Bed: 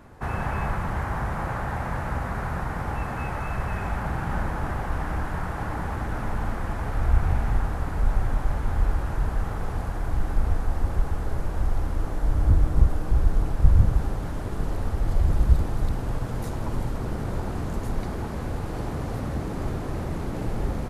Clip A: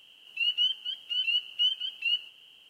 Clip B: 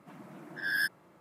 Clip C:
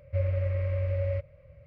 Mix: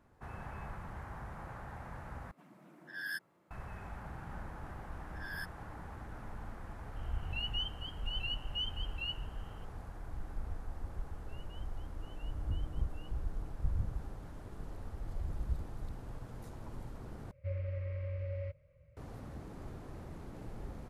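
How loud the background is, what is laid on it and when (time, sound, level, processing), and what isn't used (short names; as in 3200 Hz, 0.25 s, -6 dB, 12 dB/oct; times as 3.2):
bed -17.5 dB
2.31 replace with B -10 dB
4.58 add B -13.5 dB
6.96 add A -12 dB
10.92 add A -17.5 dB + LPF 1100 Hz
17.31 replace with C -10 dB + bell 740 Hz -5.5 dB 0.52 oct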